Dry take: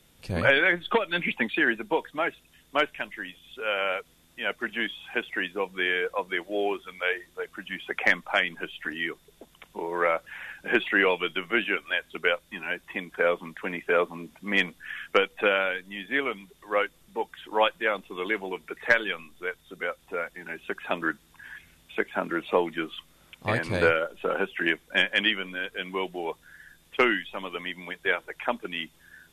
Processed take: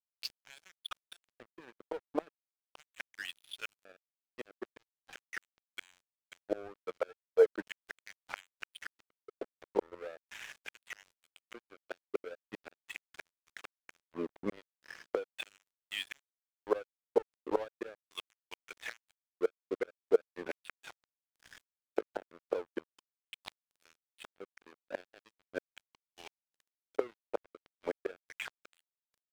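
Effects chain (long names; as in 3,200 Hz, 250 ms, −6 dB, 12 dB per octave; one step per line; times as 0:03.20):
gate with flip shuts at −22 dBFS, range −24 dB
auto-filter band-pass square 0.39 Hz 470–4,700 Hz
dead-zone distortion −55.5 dBFS
level +13 dB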